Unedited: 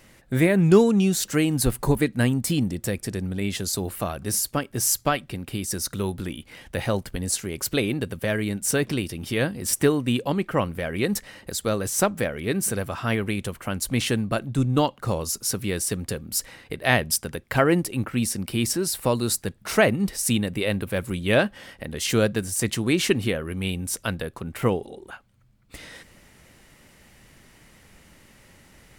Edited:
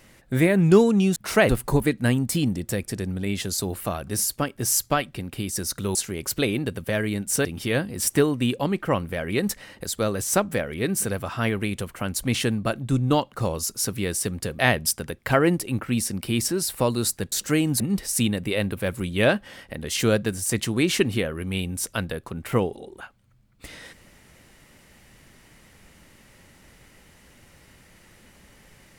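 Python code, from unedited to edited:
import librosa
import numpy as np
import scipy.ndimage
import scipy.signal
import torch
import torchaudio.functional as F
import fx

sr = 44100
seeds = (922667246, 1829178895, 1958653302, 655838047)

y = fx.edit(x, sr, fx.swap(start_s=1.16, length_s=0.48, other_s=19.57, other_length_s=0.33),
    fx.cut(start_s=6.1, length_s=1.2),
    fx.cut(start_s=8.8, length_s=0.31),
    fx.cut(start_s=16.25, length_s=0.59), tone=tone)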